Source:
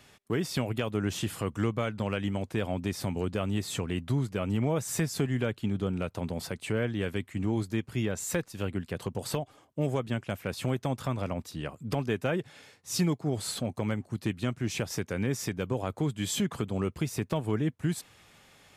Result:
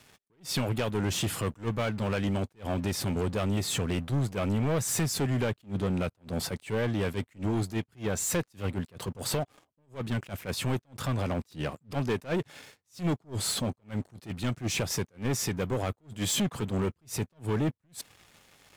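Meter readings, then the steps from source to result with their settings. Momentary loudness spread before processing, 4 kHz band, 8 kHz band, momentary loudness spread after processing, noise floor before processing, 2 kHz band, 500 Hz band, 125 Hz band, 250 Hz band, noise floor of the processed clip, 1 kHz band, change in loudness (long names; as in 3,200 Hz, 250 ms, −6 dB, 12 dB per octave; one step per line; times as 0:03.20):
5 LU, +3.5 dB, +4.0 dB, 8 LU, −60 dBFS, 0.0 dB, 0.0 dB, +0.5 dB, −1.0 dB, −75 dBFS, +1.0 dB, +0.5 dB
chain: leveller curve on the samples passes 3
level that may rise only so fast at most 260 dB per second
level −5 dB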